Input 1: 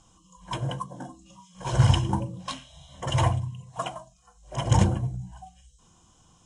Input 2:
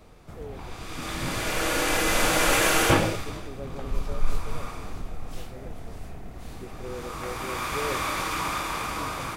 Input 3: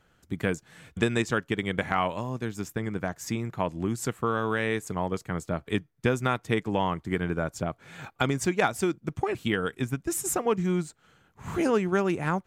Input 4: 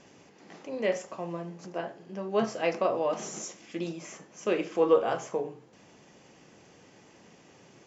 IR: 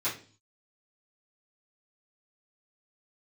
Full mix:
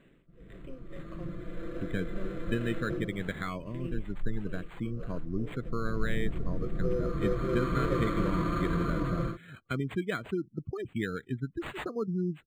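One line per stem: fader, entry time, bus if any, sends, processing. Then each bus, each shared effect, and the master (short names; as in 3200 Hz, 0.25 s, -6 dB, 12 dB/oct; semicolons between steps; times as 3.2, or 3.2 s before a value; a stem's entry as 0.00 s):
off
5.52 s -20 dB -> 6.05 s -7 dB, 0.00 s, send -15.5 dB, Bessel low-pass 690 Hz, order 2; comb 5.9 ms, depth 92%; AGC gain up to 12 dB
-3.5 dB, 1.50 s, no send, spectral gate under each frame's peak -20 dB strong
-6.0 dB, 0.00 s, no send, negative-ratio compressor -34 dBFS, ratio -1; beating tremolo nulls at 1.8 Hz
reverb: on, RT60 0.40 s, pre-delay 3 ms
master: fixed phaser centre 2000 Hz, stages 4; decimation joined by straight lines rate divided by 8×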